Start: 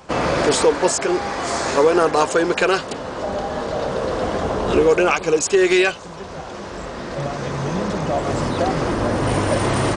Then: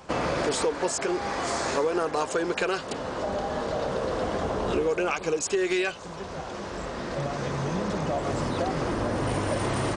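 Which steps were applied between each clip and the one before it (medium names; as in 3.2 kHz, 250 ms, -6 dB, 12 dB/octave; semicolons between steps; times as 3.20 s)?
compression 2.5:1, threshold -22 dBFS, peak gain reduction 8.5 dB; trim -3.5 dB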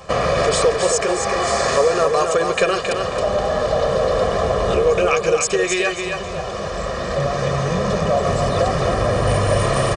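comb 1.7 ms, depth 71%; on a send: feedback delay 270 ms, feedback 28%, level -5.5 dB; on the sum: trim +6.5 dB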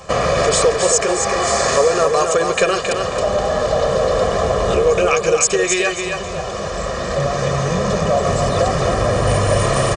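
peaking EQ 7 kHz +5.5 dB 0.55 oct; trim +1.5 dB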